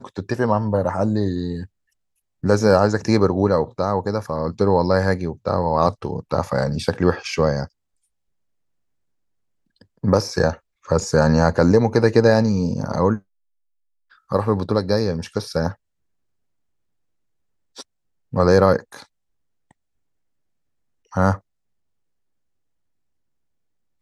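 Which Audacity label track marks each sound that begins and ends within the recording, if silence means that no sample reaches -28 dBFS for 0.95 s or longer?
10.040000	13.170000	sound
14.320000	15.720000	sound
17.790000	18.960000	sound
21.140000	21.360000	sound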